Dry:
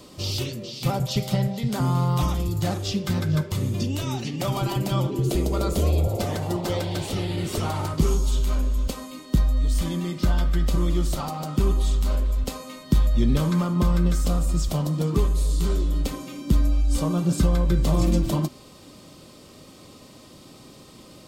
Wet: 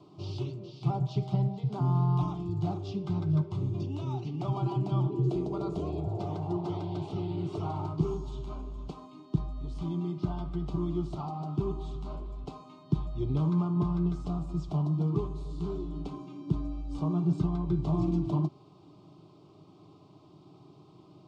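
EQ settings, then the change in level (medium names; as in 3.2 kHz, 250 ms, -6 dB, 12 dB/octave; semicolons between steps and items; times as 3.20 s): high-pass 59 Hz 24 dB/octave; tape spacing loss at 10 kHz 35 dB; static phaser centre 350 Hz, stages 8; -2.5 dB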